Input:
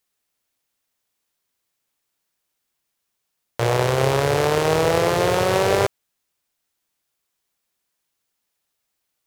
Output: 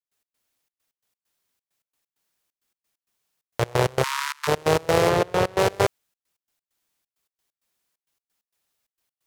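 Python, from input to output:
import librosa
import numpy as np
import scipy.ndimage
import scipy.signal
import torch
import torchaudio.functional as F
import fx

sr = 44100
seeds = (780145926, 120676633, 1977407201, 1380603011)

y = fx.step_gate(x, sr, bpm=132, pattern='.x.xxx.x', floor_db=-24.0, edge_ms=4.5)
y = fx.cheby1_highpass(y, sr, hz=910.0, order=10, at=(4.02, 4.47), fade=0.02)
y = fx.high_shelf(y, sr, hz=4200.0, db=-7.0, at=(5.09, 5.59))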